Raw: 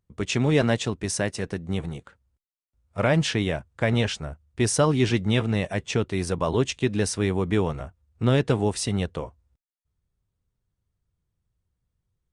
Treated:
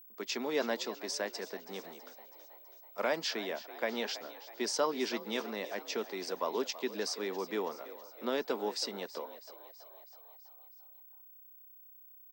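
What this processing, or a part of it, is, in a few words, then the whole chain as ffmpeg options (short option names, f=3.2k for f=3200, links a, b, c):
old television with a line whistle: -filter_complex "[0:a]asettb=1/sr,asplit=3[a][b][c];[a]atrim=end=1.624[d];[b]atrim=start=1.62:end=3.2,asetpts=PTS-STARTPTS,afade=t=in:d=0.004:c=qsin,afade=t=out:st=1.576:d=0.004:c=qsin,highshelf=f=7.9k:g=11.5[e];[c]atrim=start=3.196[f];[d][e]acrossfade=d=0.004:c1=hsin:c2=qsin[g];[g][f]acrossfade=d=0.004:c1=qsin:c2=hsin,highpass=f=240:w=0.5412,highpass=f=240:w=1.3066,asplit=7[h][i][j][k][l][m][n];[i]adelay=326,afreqshift=60,volume=-16dB[o];[j]adelay=652,afreqshift=120,volume=-20.3dB[p];[k]adelay=978,afreqshift=180,volume=-24.6dB[q];[l]adelay=1304,afreqshift=240,volume=-28.9dB[r];[m]adelay=1630,afreqshift=300,volume=-33.2dB[s];[n]adelay=1956,afreqshift=360,volume=-37.5dB[t];[h][o][p][q][r][s][t]amix=inputs=7:normalize=0,highpass=f=210:w=0.5412,highpass=f=210:w=1.3066,equalizer=f=300:t=q:w=4:g=-5,equalizer=f=970:t=q:w=4:g=4,equalizer=f=2.8k:t=q:w=4:g=-4,equalizer=f=4.8k:t=q:w=4:g=10,lowpass=f=7k:w=0.5412,lowpass=f=7k:w=1.3066,aeval=exprs='val(0)+0.00631*sin(2*PI*15734*n/s)':c=same,volume=-9dB"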